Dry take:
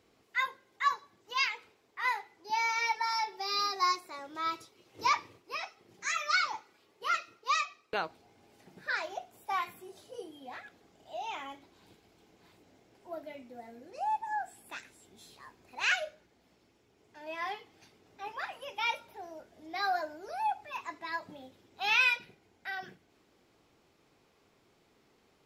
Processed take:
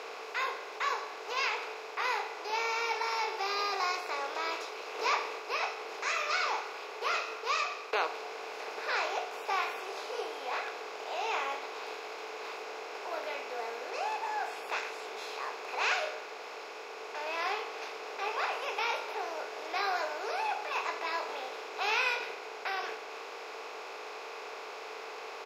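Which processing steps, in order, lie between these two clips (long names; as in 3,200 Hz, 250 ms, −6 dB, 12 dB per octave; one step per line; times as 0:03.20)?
compressor on every frequency bin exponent 0.4
high-pass with resonance 450 Hz, resonance Q 3.8
double-tracking delay 18 ms −10.5 dB
level −9 dB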